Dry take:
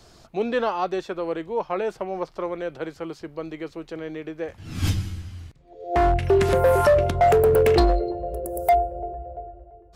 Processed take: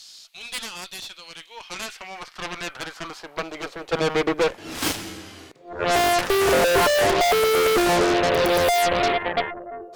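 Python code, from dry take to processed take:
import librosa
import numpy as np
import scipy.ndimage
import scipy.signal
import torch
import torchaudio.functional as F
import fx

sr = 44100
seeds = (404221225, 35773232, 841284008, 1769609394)

y = fx.filter_sweep_highpass(x, sr, from_hz=3800.0, to_hz=400.0, start_s=1.23, end_s=4.26, q=1.6)
y = np.clip(10.0 ** (25.5 / 20.0) * y, -1.0, 1.0) / 10.0 ** (25.5 / 20.0)
y = fx.hpss(y, sr, part='harmonic', gain_db=6)
y = fx.cheby_harmonics(y, sr, harmonics=(2, 7, 8), levels_db=(-10, -9, -18), full_scale_db=-18.0)
y = y * librosa.db_to_amplitude(3.0)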